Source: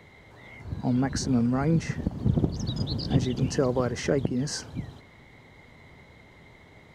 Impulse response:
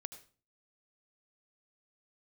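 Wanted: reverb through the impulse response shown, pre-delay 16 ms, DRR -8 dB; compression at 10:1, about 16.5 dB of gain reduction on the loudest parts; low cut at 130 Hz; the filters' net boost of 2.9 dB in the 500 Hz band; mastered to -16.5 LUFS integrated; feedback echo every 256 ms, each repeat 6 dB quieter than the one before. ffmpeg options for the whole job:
-filter_complex "[0:a]highpass=130,equalizer=f=500:t=o:g=3.5,acompressor=threshold=0.0178:ratio=10,aecho=1:1:256|512|768|1024|1280|1536:0.501|0.251|0.125|0.0626|0.0313|0.0157,asplit=2[s0][s1];[1:a]atrim=start_sample=2205,adelay=16[s2];[s1][s2]afir=irnorm=-1:irlink=0,volume=3.76[s3];[s0][s3]amix=inputs=2:normalize=0,volume=5.01"

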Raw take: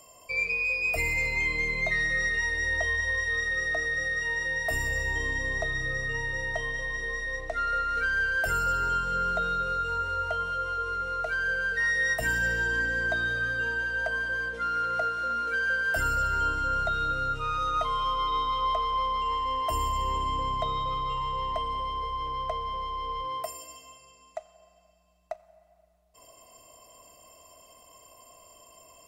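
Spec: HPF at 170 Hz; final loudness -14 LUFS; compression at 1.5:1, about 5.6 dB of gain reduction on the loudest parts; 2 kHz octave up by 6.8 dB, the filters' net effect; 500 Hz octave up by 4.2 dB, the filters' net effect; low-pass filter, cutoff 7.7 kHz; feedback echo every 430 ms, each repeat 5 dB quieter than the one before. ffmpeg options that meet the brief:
-af "highpass=170,lowpass=7700,equalizer=f=500:t=o:g=4.5,equalizer=f=2000:t=o:g=8,acompressor=threshold=0.0224:ratio=1.5,aecho=1:1:430|860|1290|1720|2150|2580|3010:0.562|0.315|0.176|0.0988|0.0553|0.031|0.0173,volume=3.76"

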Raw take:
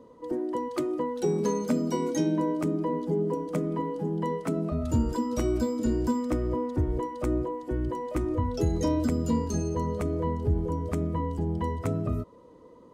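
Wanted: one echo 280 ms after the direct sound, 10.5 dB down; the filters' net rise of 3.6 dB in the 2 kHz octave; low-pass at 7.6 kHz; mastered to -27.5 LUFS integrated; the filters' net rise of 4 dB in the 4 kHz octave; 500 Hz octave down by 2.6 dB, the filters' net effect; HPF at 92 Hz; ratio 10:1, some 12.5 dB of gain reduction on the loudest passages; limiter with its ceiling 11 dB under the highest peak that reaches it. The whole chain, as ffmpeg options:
-af "highpass=92,lowpass=7600,equalizer=f=500:t=o:g=-3.5,equalizer=f=2000:t=o:g=3.5,equalizer=f=4000:t=o:g=5,acompressor=threshold=0.0158:ratio=10,alimiter=level_in=3.55:limit=0.0631:level=0:latency=1,volume=0.282,aecho=1:1:280:0.299,volume=5.96"

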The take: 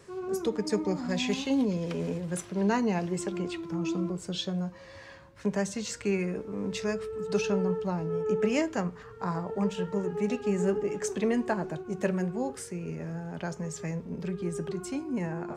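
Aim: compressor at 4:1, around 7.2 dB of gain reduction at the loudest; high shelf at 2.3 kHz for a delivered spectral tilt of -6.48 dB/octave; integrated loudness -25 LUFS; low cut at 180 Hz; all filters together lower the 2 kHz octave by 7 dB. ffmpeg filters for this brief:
-af "highpass=180,equalizer=f=2000:t=o:g=-6,highshelf=f=2300:g=-6,acompressor=threshold=0.0251:ratio=4,volume=3.98"

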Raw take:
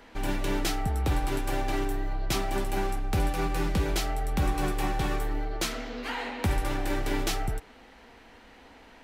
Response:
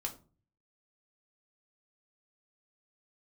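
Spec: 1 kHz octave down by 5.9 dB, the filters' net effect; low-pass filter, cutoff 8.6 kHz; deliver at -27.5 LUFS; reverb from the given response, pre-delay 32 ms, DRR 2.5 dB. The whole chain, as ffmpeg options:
-filter_complex "[0:a]lowpass=8600,equalizer=f=1000:t=o:g=-8.5,asplit=2[s0][s1];[1:a]atrim=start_sample=2205,adelay=32[s2];[s1][s2]afir=irnorm=-1:irlink=0,volume=0.75[s3];[s0][s3]amix=inputs=2:normalize=0,volume=1.33"

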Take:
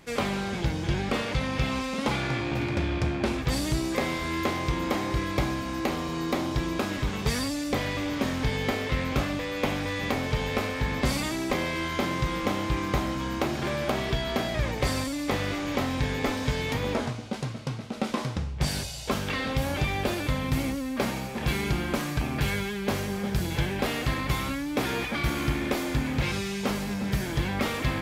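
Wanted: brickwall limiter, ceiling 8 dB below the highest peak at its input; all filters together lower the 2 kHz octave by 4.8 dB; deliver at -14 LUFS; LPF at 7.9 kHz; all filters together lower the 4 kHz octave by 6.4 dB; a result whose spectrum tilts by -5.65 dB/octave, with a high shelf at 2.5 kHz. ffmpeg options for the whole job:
-af "lowpass=7900,equalizer=f=2000:t=o:g=-3,highshelf=f=2500:g=-4,equalizer=f=4000:t=o:g=-3.5,volume=8.91,alimiter=limit=0.562:level=0:latency=1"

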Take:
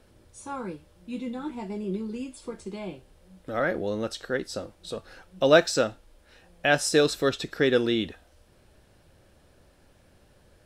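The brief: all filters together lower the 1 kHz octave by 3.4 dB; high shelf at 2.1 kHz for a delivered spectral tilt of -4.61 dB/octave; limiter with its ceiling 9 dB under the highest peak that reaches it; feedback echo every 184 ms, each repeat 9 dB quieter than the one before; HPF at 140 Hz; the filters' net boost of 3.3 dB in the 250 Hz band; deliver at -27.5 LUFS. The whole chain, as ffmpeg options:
-af "highpass=140,equalizer=f=250:t=o:g=5,equalizer=f=1000:t=o:g=-5,highshelf=f=2100:g=-3.5,alimiter=limit=0.168:level=0:latency=1,aecho=1:1:184|368|552|736:0.355|0.124|0.0435|0.0152,volume=1.33"

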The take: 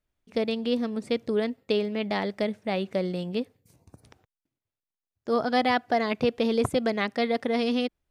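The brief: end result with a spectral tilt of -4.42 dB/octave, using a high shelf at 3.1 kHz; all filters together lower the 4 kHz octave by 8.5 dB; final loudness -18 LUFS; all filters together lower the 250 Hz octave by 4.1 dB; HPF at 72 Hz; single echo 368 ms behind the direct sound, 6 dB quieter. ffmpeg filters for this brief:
-af "highpass=72,equalizer=f=250:t=o:g=-4.5,highshelf=f=3100:g=-8.5,equalizer=f=4000:t=o:g=-5,aecho=1:1:368:0.501,volume=3.55"

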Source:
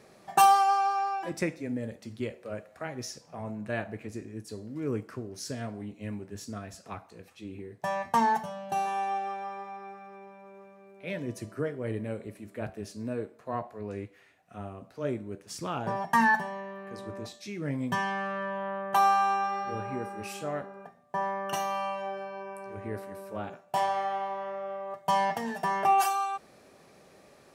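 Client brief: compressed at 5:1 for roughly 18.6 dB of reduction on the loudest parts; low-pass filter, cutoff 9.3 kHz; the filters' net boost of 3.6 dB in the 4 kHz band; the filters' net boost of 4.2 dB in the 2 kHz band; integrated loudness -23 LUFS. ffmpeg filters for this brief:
-af "lowpass=9300,equalizer=f=2000:t=o:g=4.5,equalizer=f=4000:t=o:g=3.5,acompressor=threshold=0.0141:ratio=5,volume=7.94"

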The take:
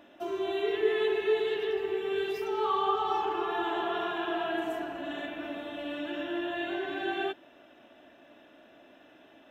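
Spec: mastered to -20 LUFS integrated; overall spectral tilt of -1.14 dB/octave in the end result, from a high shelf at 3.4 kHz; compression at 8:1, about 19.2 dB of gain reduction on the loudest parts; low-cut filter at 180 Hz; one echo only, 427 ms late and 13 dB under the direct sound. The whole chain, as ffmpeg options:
-af "highpass=180,highshelf=f=3400:g=-8,acompressor=threshold=0.00708:ratio=8,aecho=1:1:427:0.224,volume=20"

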